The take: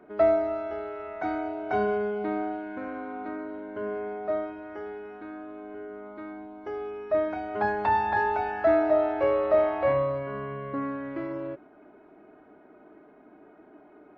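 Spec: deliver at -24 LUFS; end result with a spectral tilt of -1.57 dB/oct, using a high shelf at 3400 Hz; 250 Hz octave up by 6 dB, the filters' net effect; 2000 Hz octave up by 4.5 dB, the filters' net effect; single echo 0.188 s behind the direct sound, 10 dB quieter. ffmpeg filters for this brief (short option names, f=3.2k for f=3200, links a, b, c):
-af "equalizer=f=250:t=o:g=8,equalizer=f=2k:t=o:g=7,highshelf=f=3.4k:g=-5,aecho=1:1:188:0.316,volume=1.5dB"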